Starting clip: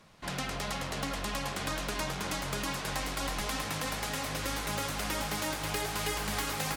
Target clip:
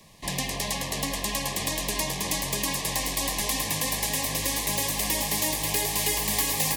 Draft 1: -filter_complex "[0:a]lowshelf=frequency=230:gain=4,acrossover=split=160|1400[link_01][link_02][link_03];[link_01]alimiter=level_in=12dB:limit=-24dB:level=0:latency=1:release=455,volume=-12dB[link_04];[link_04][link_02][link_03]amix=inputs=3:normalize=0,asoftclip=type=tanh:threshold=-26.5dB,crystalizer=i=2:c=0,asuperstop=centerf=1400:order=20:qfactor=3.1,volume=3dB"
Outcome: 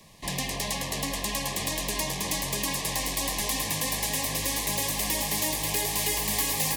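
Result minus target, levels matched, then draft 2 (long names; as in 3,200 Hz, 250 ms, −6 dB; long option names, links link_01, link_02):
soft clipping: distortion +16 dB
-filter_complex "[0:a]lowshelf=frequency=230:gain=4,acrossover=split=160|1400[link_01][link_02][link_03];[link_01]alimiter=level_in=12dB:limit=-24dB:level=0:latency=1:release=455,volume=-12dB[link_04];[link_04][link_02][link_03]amix=inputs=3:normalize=0,asoftclip=type=tanh:threshold=-16.5dB,crystalizer=i=2:c=0,asuperstop=centerf=1400:order=20:qfactor=3.1,volume=3dB"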